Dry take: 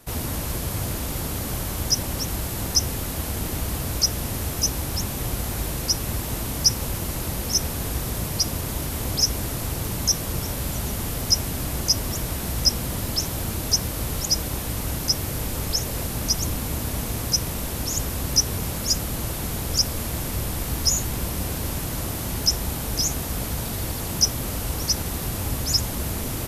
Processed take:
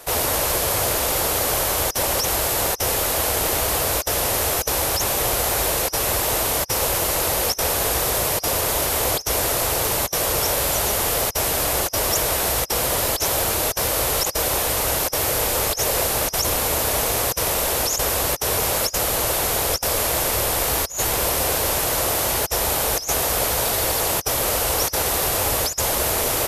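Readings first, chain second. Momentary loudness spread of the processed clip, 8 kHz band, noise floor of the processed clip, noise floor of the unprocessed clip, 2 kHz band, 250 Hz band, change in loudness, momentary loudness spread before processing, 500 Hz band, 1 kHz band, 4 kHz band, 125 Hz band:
1 LU, +4.5 dB, -30 dBFS, -30 dBFS, +10.5 dB, -1.5 dB, +5.0 dB, 7 LU, +11.0 dB, +11.5 dB, +1.0 dB, -3.5 dB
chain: resonant low shelf 340 Hz -12.5 dB, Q 1.5; compressor with a negative ratio -29 dBFS, ratio -0.5; trim +8.5 dB

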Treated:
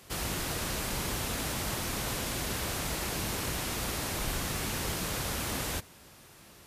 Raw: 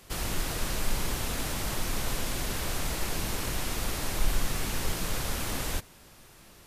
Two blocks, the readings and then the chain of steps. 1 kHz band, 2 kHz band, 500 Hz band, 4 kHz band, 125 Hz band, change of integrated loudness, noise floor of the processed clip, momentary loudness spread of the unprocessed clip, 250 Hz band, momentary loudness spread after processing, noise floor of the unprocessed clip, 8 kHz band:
0.0 dB, 0.0 dB, 0.0 dB, 0.0 dB, -1.5 dB, -0.5 dB, -55 dBFS, 1 LU, 0.0 dB, 0 LU, -54 dBFS, 0.0 dB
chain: high-pass 57 Hz

